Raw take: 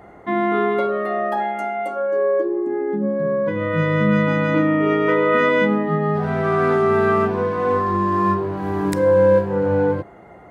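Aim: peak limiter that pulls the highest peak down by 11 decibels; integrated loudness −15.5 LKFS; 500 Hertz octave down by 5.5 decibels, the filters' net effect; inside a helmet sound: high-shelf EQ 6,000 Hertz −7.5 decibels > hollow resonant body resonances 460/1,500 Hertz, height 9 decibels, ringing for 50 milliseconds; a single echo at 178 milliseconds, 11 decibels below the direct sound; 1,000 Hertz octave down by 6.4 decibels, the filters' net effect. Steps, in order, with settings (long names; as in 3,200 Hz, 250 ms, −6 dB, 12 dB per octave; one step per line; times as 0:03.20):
parametric band 500 Hz −5 dB
parametric band 1,000 Hz −6.5 dB
brickwall limiter −15.5 dBFS
high-shelf EQ 6,000 Hz −7.5 dB
single-tap delay 178 ms −11 dB
hollow resonant body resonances 460/1,500 Hz, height 9 dB, ringing for 50 ms
level +7.5 dB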